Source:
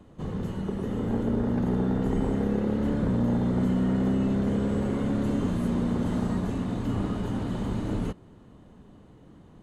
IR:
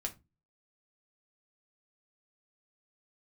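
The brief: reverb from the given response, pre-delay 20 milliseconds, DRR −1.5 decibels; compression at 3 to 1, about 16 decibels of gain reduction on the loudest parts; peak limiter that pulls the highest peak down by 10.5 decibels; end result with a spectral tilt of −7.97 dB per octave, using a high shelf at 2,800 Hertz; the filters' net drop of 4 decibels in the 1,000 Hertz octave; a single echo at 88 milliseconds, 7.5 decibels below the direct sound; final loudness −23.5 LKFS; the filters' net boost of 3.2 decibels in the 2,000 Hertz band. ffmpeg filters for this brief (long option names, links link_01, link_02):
-filter_complex "[0:a]equalizer=frequency=1000:width_type=o:gain=-7,equalizer=frequency=2000:width_type=o:gain=5.5,highshelf=frequency=2800:gain=3,acompressor=threshold=-45dB:ratio=3,alimiter=level_in=17.5dB:limit=-24dB:level=0:latency=1,volume=-17.5dB,aecho=1:1:88:0.422,asplit=2[link_01][link_02];[1:a]atrim=start_sample=2205,adelay=20[link_03];[link_02][link_03]afir=irnorm=-1:irlink=0,volume=1.5dB[link_04];[link_01][link_04]amix=inputs=2:normalize=0,volume=20.5dB"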